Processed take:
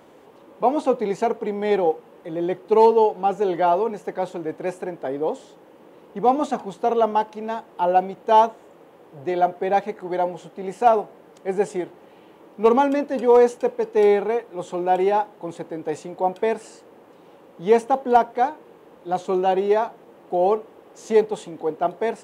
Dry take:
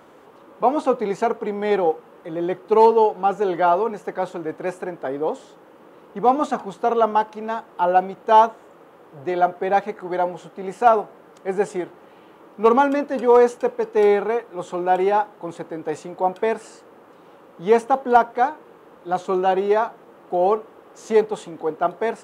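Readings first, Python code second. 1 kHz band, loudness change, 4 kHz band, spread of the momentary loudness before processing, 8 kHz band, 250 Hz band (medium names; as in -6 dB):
-1.5 dB, -1.0 dB, -0.5 dB, 14 LU, no reading, 0.0 dB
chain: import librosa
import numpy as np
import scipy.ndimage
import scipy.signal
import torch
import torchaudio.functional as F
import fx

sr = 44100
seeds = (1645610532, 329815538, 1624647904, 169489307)

y = fx.peak_eq(x, sr, hz=1300.0, db=-7.5, octaves=0.66)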